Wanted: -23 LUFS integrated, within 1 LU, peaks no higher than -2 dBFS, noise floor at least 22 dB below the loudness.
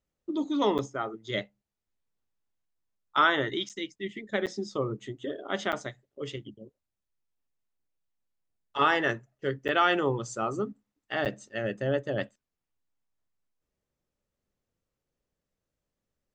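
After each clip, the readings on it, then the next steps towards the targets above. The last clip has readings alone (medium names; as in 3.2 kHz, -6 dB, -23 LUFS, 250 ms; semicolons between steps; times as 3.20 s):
dropouts 6; longest dropout 8.0 ms; loudness -30.0 LUFS; peak level -10.0 dBFS; loudness target -23.0 LUFS
-> interpolate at 0.78/3.69/4.46/5.72/9.68/11.25 s, 8 ms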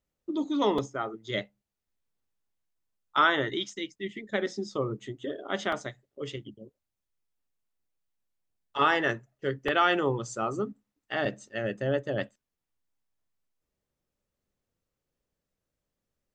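dropouts 0; loudness -30.0 LUFS; peak level -10.0 dBFS; loudness target -23.0 LUFS
-> trim +7 dB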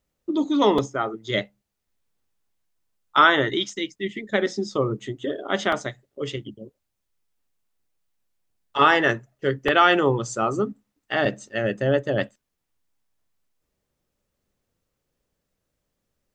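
loudness -23.0 LUFS; peak level -3.0 dBFS; noise floor -79 dBFS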